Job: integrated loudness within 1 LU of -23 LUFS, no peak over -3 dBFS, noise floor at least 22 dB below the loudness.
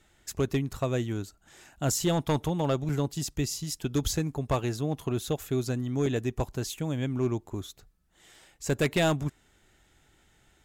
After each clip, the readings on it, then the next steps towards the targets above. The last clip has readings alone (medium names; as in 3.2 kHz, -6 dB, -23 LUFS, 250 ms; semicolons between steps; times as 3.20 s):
clipped samples 0.6%; clipping level -19.0 dBFS; dropouts 2; longest dropout 4.1 ms; loudness -30.0 LUFS; peak level -19.0 dBFS; loudness target -23.0 LUFS
-> clip repair -19 dBFS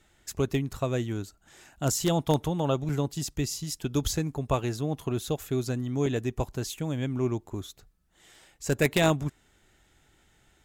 clipped samples 0.0%; dropouts 2; longest dropout 4.1 ms
-> interpolate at 2.89/6.06 s, 4.1 ms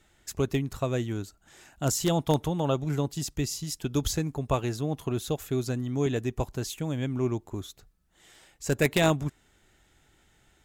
dropouts 0; loudness -29.5 LUFS; peak level -10.0 dBFS; loudness target -23.0 LUFS
-> trim +6.5 dB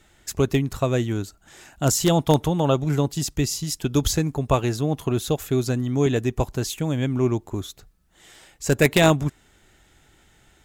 loudness -23.0 LUFS; peak level -3.5 dBFS; noise floor -59 dBFS